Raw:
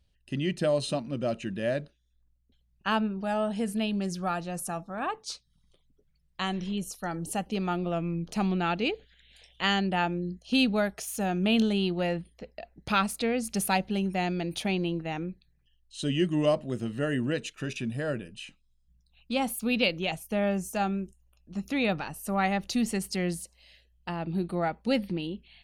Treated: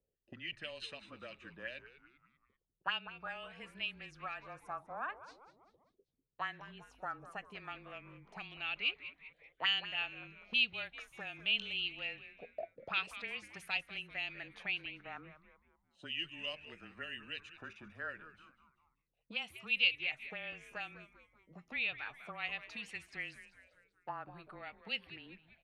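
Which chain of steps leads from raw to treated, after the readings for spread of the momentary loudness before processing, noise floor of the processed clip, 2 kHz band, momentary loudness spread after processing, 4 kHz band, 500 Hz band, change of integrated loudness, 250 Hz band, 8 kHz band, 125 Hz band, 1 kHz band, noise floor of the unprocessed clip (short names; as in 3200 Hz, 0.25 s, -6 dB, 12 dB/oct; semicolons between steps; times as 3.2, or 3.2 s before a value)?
11 LU, -82 dBFS, -3.5 dB, 18 LU, -3.5 dB, -21.0 dB, -9.5 dB, -27.5 dB, under -25 dB, -25.0 dB, -14.0 dB, -69 dBFS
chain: auto-wah 470–2800 Hz, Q 4.4, up, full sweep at -24 dBFS; low shelf 210 Hz +7.5 dB; on a send: frequency-shifting echo 0.195 s, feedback 47%, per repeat -130 Hz, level -14 dB; on the sum: frequency shift -22 Hz; gain +1 dB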